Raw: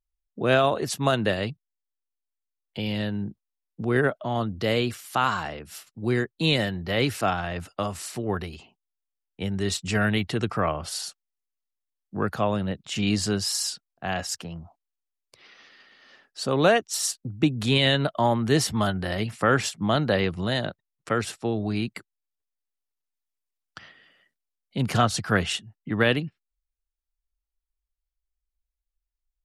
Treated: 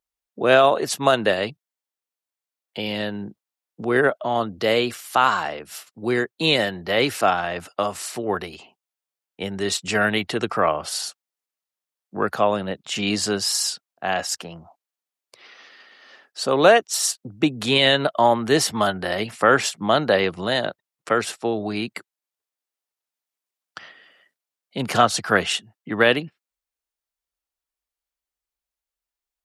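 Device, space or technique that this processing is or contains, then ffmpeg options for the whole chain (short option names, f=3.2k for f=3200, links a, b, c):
filter by subtraction: -filter_complex "[0:a]asplit=2[a][b];[b]lowpass=580,volume=-1[c];[a][c]amix=inputs=2:normalize=0,volume=4.5dB"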